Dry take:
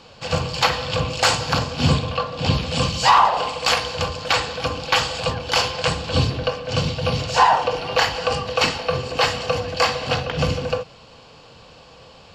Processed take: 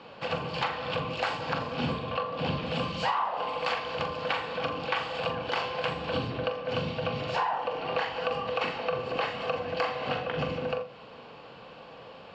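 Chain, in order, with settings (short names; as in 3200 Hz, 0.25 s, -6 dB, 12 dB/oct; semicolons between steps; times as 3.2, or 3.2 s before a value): three-band isolator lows -15 dB, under 150 Hz, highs -24 dB, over 3300 Hz; compressor 4:1, threshold -29 dBFS, peak gain reduction 16 dB; flutter echo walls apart 7.2 m, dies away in 0.29 s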